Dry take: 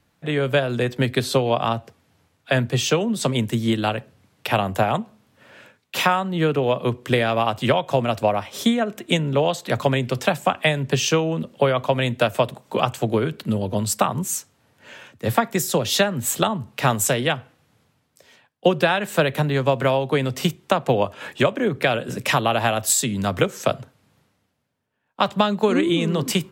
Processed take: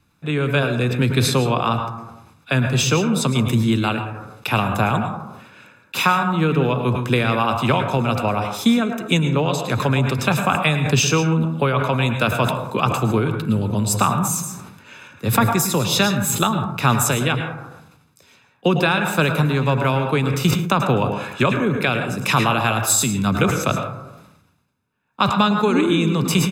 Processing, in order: comb 0.8 ms, depth 53%; plate-style reverb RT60 0.73 s, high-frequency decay 0.35×, pre-delay 95 ms, DRR 6.5 dB; decay stretcher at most 53 dB/s

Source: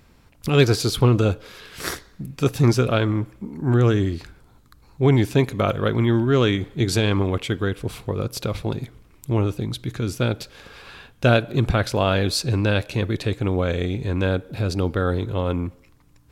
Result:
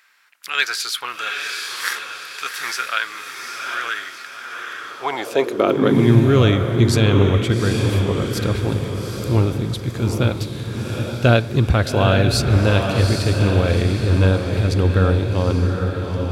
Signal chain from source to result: echo that smears into a reverb 816 ms, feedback 45%, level -4 dB; high-pass sweep 1.6 kHz -> 66 Hz, 4.76–6.55 s; trim +1.5 dB

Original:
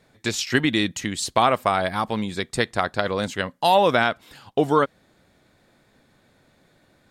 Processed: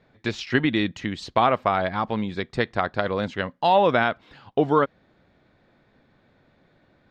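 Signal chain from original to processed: distance through air 220 m

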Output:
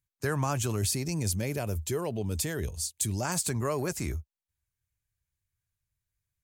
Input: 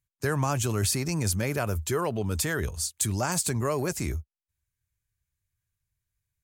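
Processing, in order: 0.76–3.25 s: peaking EQ 1.3 kHz -10 dB 1 oct; trim -2.5 dB

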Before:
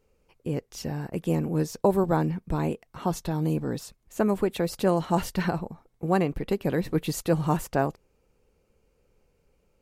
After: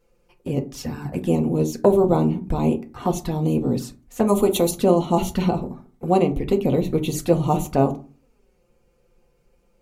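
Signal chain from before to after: 4.27–4.71 s: FFT filter 410 Hz 0 dB, 1.1 kHz +7 dB, 2.4 kHz +1 dB, 9.1 kHz +15 dB; touch-sensitive flanger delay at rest 6 ms, full sweep at -24 dBFS; on a send: reverberation RT60 0.35 s, pre-delay 4 ms, DRR 5 dB; on the sum: trim +6 dB

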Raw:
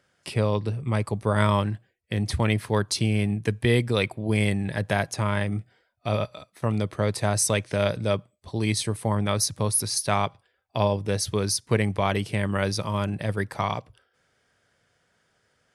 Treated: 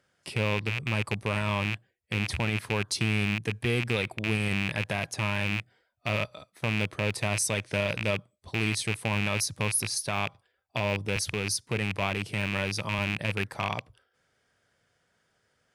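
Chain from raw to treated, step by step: rattle on loud lows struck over -28 dBFS, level -13 dBFS; 11.16–12.99 s: high-pass 52 Hz 24 dB/octave; peak limiter -13.5 dBFS, peak gain reduction 8.5 dB; trim -3.5 dB

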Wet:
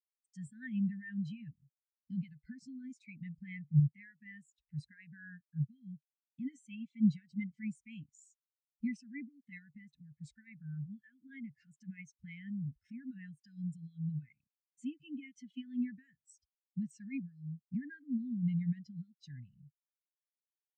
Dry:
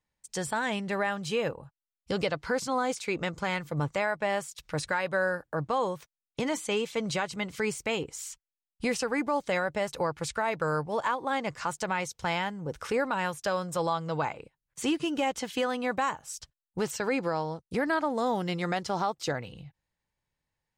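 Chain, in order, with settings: peak limiter -25 dBFS, peak gain reduction 8.5 dB; elliptic band-stop 250–1800 Hz, stop band 40 dB; spectral contrast expander 2.5:1; trim +7.5 dB

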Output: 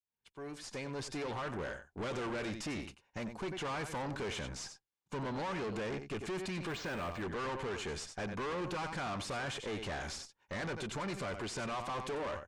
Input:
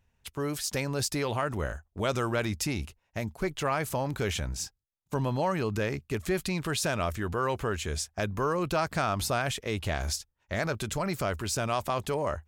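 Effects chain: fade-in on the opening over 1.98 s; peaking EQ 67 Hz -14 dB 2.1 oct; comb of notches 650 Hz; delay 92 ms -14 dB; valve stage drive 41 dB, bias 0.5; low-pass 9.5 kHz 24 dB/octave; treble shelf 4.8 kHz -9 dB; 6.68–7.22 s: decimation joined by straight lines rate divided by 4×; trim +5.5 dB

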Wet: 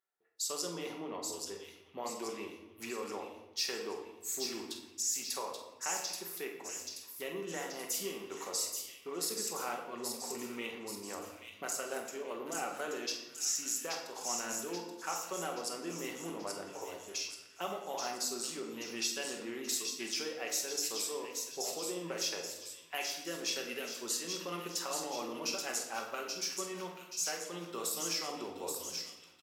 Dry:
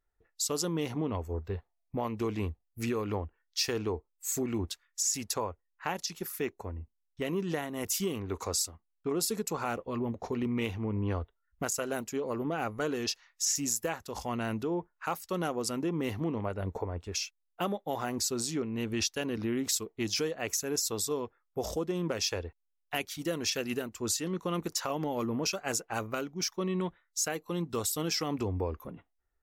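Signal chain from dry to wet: high-pass 260 Hz 12 dB/octave; bass shelf 350 Hz -9.5 dB; doubling 48 ms -11 dB; on a send: feedback echo behind a high-pass 830 ms, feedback 53%, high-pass 2.8 kHz, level -4 dB; on the sum: simulated room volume 490 m³, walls mixed, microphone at 1.1 m; trim -5.5 dB

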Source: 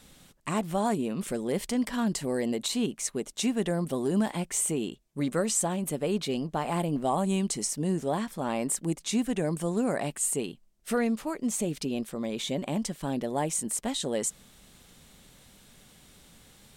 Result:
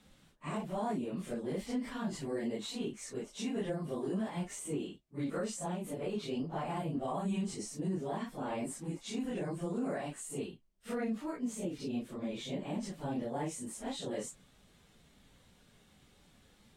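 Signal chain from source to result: phase randomisation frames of 100 ms; peak limiter -20.5 dBFS, peak gain reduction 5.5 dB; low-pass 3.5 kHz 6 dB/octave; trim -6.5 dB

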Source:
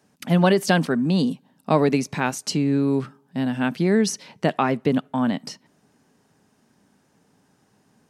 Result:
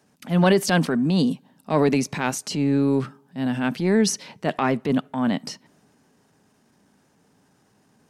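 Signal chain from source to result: transient shaper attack -8 dB, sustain +2 dB; trim +1 dB

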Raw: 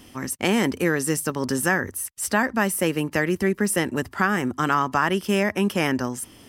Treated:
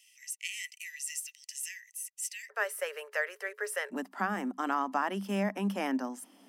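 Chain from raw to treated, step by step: rippled Chebyshev high-pass 1.9 kHz, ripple 9 dB, from 2.49 s 410 Hz, from 3.90 s 190 Hz; trim -5 dB

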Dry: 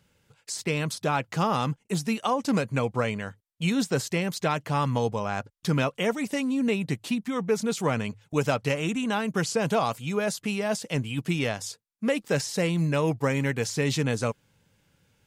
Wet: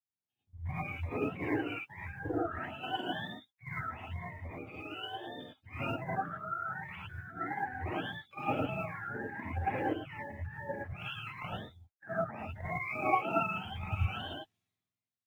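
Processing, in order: spectrum inverted on a logarithmic axis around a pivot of 600 Hz; tone controls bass -3 dB, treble -2 dB; level held to a coarse grid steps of 13 dB; peak limiter -23.5 dBFS, peak gain reduction 7.5 dB; 3.72–5.73 s: compression 4:1, threshold -37 dBFS, peak gain reduction 7 dB; companded quantiser 8-bit; gated-style reverb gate 130 ms rising, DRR -6.5 dB; three bands expanded up and down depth 70%; trim -6.5 dB

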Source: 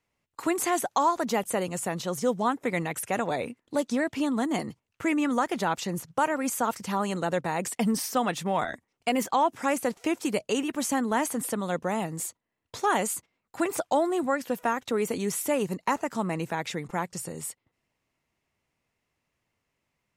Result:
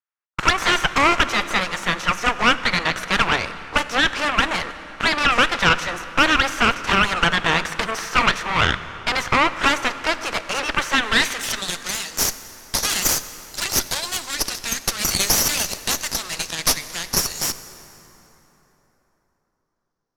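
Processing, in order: spectral peaks clipped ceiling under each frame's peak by 15 dB; peaking EQ 5.9 kHz +10 dB 0.37 oct; waveshaping leveller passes 5; band-pass sweep 1.4 kHz -> 4.7 kHz, 10.93–11.73 s; Chebyshev shaper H 4 -6 dB, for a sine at -7.5 dBFS; plate-style reverb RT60 3.9 s, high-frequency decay 0.6×, DRR 12 dB

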